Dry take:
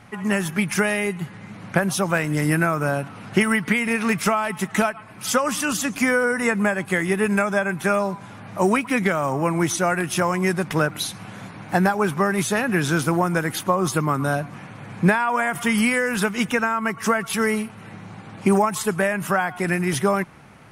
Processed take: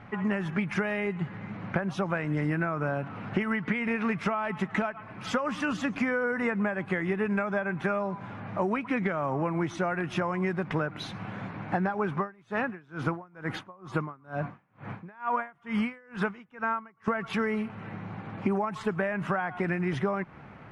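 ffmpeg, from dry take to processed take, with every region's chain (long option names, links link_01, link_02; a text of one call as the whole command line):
ffmpeg -i in.wav -filter_complex "[0:a]asettb=1/sr,asplit=3[link_01][link_02][link_03];[link_01]atrim=end=12.174[link_04];[link_02]atrim=start=12.17:end=17.08,asetpts=PTS-STARTPTS,afade=type=in:duration=0.004:curve=qsin,afade=type=out:start_time=4.906:duration=0.004:curve=qsin,equalizer=frequency=1100:width=1.3:gain=3.5,aeval=exprs='val(0)*pow(10,-35*(0.5-0.5*cos(2*PI*2.2*n/s))/20)':channel_layout=same[link_05];[link_03]atrim=start=17.076[link_06];[link_04][link_05]acrossfade=duration=0.004:curve1=hsin:curve2=qsin[link_07];[link_07][link_06]acrossfade=duration=0.004:curve1=qsin:curve2=hsin,lowpass=2300,acompressor=threshold=-26dB:ratio=4" out.wav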